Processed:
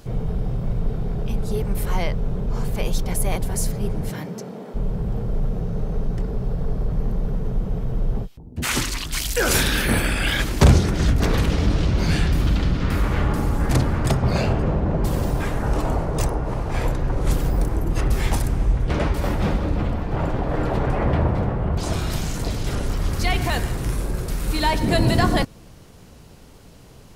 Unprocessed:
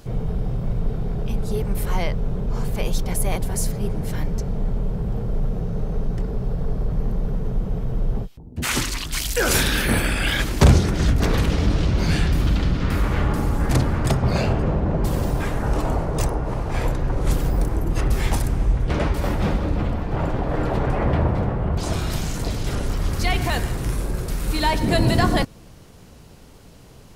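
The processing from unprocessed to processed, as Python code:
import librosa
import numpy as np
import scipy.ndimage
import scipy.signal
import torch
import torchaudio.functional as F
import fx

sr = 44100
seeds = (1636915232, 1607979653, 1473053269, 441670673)

y = fx.highpass(x, sr, hz=fx.line((4.09, 120.0), (4.74, 270.0)), slope=24, at=(4.09, 4.74), fade=0.02)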